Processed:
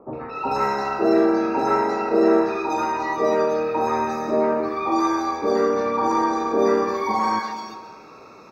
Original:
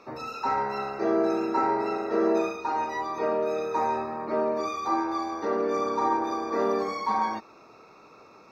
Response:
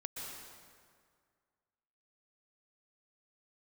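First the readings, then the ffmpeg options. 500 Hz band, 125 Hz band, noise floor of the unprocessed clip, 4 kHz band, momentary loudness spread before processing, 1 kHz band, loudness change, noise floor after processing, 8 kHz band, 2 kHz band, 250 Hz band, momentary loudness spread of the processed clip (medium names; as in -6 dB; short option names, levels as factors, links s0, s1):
+6.5 dB, +7.5 dB, -53 dBFS, +6.0 dB, 5 LU, +5.0 dB, +6.0 dB, -44 dBFS, no reading, +6.5 dB, +7.5 dB, 6 LU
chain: -filter_complex "[0:a]acontrast=51,acrossover=split=910|3200[s0][s1][s2];[s1]adelay=130[s3];[s2]adelay=350[s4];[s0][s3][s4]amix=inputs=3:normalize=0,asplit=2[s5][s6];[1:a]atrim=start_sample=2205[s7];[s6][s7]afir=irnorm=-1:irlink=0,volume=0.422[s8];[s5][s8]amix=inputs=2:normalize=0"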